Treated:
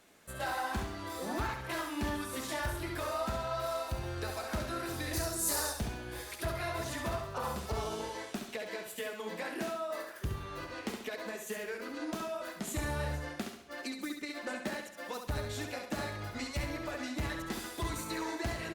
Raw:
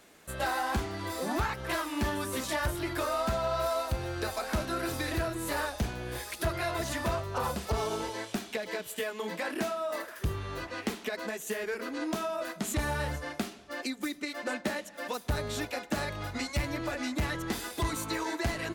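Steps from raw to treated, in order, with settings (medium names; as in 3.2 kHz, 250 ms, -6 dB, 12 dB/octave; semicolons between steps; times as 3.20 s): 5.13–5.73 s: resonant high shelf 4.1 kHz +12.5 dB, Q 1.5; feedback delay 68 ms, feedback 39%, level -6 dB; trim -5.5 dB; Opus 64 kbps 48 kHz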